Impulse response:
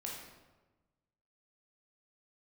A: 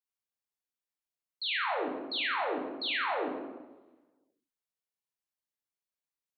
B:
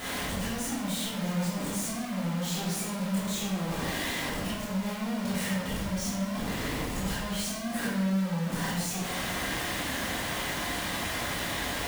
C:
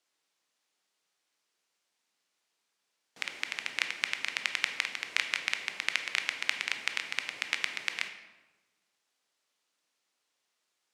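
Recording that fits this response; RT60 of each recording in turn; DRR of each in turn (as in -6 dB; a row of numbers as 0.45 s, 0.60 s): A; 1.2 s, 1.2 s, 1.2 s; -3.0 dB, -8.5 dB, 6.5 dB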